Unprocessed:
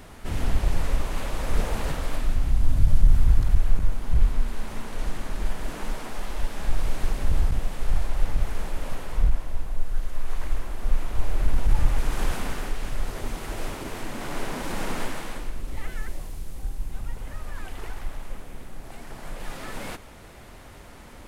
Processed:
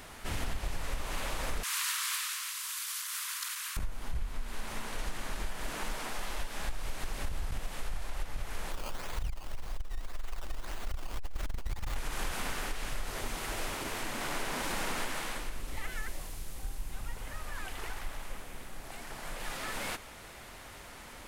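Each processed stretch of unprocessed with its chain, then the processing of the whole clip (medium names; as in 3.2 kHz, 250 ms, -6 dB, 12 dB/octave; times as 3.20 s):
1.63–3.77 s: steep high-pass 980 Hz 96 dB/octave + treble shelf 3 kHz +12 dB
8.71–11.96 s: decimation with a swept rate 16× 1.8 Hz + transformer saturation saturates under 58 Hz
whole clip: tilt shelf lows -5 dB, about 680 Hz; compression 10:1, threshold -26 dBFS; trim -2.5 dB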